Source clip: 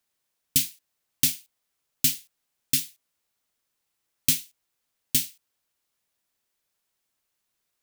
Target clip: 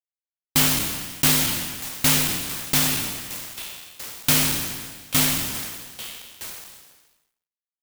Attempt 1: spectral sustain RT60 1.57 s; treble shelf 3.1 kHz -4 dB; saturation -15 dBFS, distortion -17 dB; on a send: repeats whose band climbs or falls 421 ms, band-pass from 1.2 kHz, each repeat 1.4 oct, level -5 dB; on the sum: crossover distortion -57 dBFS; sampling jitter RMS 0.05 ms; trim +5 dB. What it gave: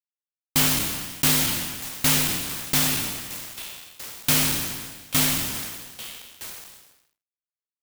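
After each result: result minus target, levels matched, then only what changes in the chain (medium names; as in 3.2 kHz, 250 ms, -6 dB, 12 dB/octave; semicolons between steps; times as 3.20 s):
saturation: distortion +11 dB; crossover distortion: distortion +10 dB
change: saturation -8 dBFS, distortion -27 dB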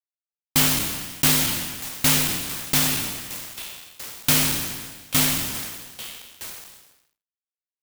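crossover distortion: distortion +9 dB
change: crossover distortion -66.5 dBFS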